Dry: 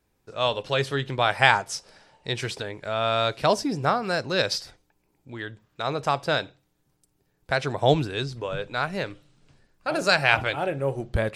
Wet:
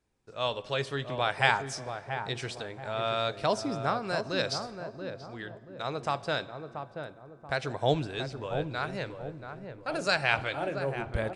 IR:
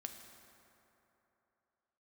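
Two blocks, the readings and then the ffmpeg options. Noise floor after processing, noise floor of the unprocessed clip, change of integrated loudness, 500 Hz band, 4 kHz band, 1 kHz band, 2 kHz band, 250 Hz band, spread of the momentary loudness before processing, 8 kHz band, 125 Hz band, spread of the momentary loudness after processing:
-52 dBFS, -71 dBFS, -6.5 dB, -5.5 dB, -6.5 dB, -6.0 dB, -6.0 dB, -5.5 dB, 15 LU, -6.5 dB, -5.5 dB, 14 LU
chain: -filter_complex "[0:a]asplit=2[s0][s1];[s1]adelay=682,lowpass=f=840:p=1,volume=0.531,asplit=2[s2][s3];[s3]adelay=682,lowpass=f=840:p=1,volume=0.45,asplit=2[s4][s5];[s5]adelay=682,lowpass=f=840:p=1,volume=0.45,asplit=2[s6][s7];[s7]adelay=682,lowpass=f=840:p=1,volume=0.45,asplit=2[s8][s9];[s9]adelay=682,lowpass=f=840:p=1,volume=0.45[s10];[s0][s2][s4][s6][s8][s10]amix=inputs=6:normalize=0,asplit=2[s11][s12];[1:a]atrim=start_sample=2205[s13];[s12][s13]afir=irnorm=-1:irlink=0,volume=0.447[s14];[s11][s14]amix=inputs=2:normalize=0,aresample=22050,aresample=44100,volume=0.376"

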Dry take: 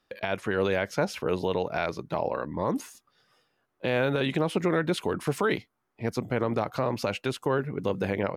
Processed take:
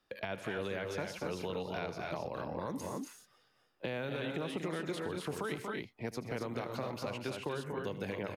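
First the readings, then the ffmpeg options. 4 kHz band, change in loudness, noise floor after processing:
-8.0 dB, -10.5 dB, -72 dBFS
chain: -filter_complex "[0:a]aecho=1:1:77|125|236|269:0.158|0.133|0.398|0.473,acrossover=split=200|2600[s0][s1][s2];[s0]acompressor=threshold=0.00708:ratio=4[s3];[s1]acompressor=threshold=0.02:ratio=4[s4];[s2]acompressor=threshold=0.00562:ratio=4[s5];[s3][s4][s5]amix=inputs=3:normalize=0,volume=0.668"

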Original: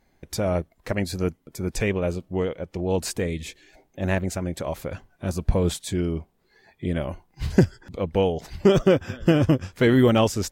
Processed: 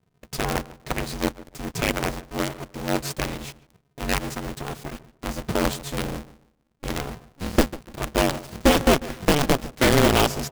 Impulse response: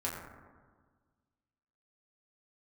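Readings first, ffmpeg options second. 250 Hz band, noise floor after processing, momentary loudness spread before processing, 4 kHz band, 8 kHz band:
-2.0 dB, -68 dBFS, 14 LU, +6.5 dB, +5.0 dB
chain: -filter_complex "[0:a]lowpass=4800,aemphasis=mode=production:type=75fm,acrossover=split=160[s0][s1];[s0]asoftclip=type=tanh:threshold=0.0794[s2];[s1]acrusher=bits=4:dc=4:mix=0:aa=0.000001[s3];[s2][s3]amix=inputs=2:normalize=0,asplit=2[s4][s5];[s5]adelay=146,lowpass=f=1500:p=1,volume=0.133,asplit=2[s6][s7];[s7]adelay=146,lowpass=f=1500:p=1,volume=0.28,asplit=2[s8][s9];[s9]adelay=146,lowpass=f=1500:p=1,volume=0.28[s10];[s4][s6][s8][s10]amix=inputs=4:normalize=0,aeval=exprs='val(0)*sgn(sin(2*PI*140*n/s))':c=same"

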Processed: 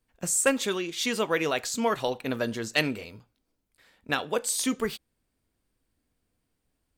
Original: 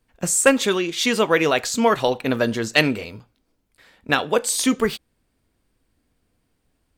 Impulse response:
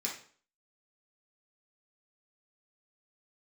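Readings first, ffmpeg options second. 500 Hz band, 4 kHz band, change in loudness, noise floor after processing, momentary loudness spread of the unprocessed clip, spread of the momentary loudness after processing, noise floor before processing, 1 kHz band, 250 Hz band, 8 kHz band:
-8.5 dB, -7.5 dB, -7.5 dB, -79 dBFS, 7 LU, 8 LU, -71 dBFS, -8.5 dB, -8.5 dB, -5.5 dB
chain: -af "highshelf=f=5900:g=4.5,volume=0.376"

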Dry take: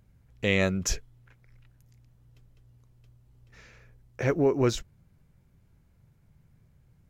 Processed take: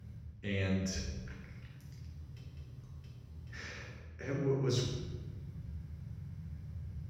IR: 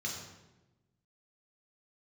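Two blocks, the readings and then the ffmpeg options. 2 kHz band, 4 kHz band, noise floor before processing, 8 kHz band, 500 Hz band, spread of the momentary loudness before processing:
-11.0 dB, -6.5 dB, -63 dBFS, -10.5 dB, -10.5 dB, 10 LU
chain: -filter_complex "[0:a]lowshelf=f=240:g=5,areverse,acompressor=threshold=0.0112:ratio=20,areverse[s0];[1:a]atrim=start_sample=2205,asetrate=36162,aresample=44100[s1];[s0][s1]afir=irnorm=-1:irlink=0,volume=1.58"

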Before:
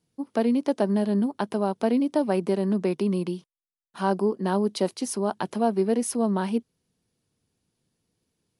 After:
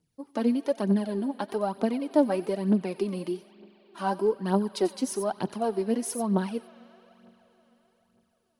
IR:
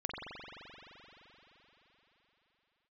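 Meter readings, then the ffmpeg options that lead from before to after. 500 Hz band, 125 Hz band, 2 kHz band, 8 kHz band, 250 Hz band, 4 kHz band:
-2.5 dB, -2.5 dB, -3.5 dB, -2.5 dB, -2.5 dB, -3.0 dB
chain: -filter_complex "[0:a]asplit=2[s0][s1];[s1]aemphasis=mode=production:type=riaa[s2];[1:a]atrim=start_sample=2205,adelay=91[s3];[s2][s3]afir=irnorm=-1:irlink=0,volume=0.106[s4];[s0][s4]amix=inputs=2:normalize=0,aphaser=in_gain=1:out_gain=1:delay=4.1:decay=0.61:speed=1.1:type=triangular,volume=0.562"

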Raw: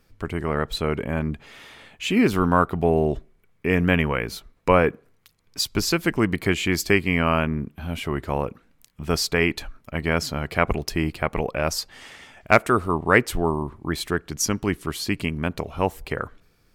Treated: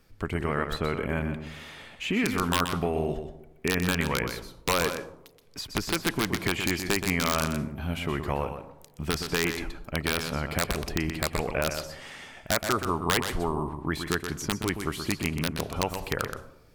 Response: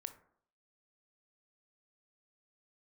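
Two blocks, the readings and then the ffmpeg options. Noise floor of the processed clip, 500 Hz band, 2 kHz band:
-54 dBFS, -7.0 dB, -5.0 dB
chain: -filter_complex "[0:a]acrossover=split=1200|2400[s0][s1][s2];[s0]acompressor=threshold=0.0501:ratio=4[s3];[s1]acompressor=threshold=0.0447:ratio=4[s4];[s2]acompressor=threshold=0.00891:ratio=4[s5];[s3][s4][s5]amix=inputs=3:normalize=0,aeval=exprs='(mod(5.01*val(0)+1,2)-1)/5.01':c=same,asplit=2[s6][s7];[1:a]atrim=start_sample=2205,asetrate=26460,aresample=44100,adelay=124[s8];[s7][s8]afir=irnorm=-1:irlink=0,volume=0.531[s9];[s6][s9]amix=inputs=2:normalize=0"

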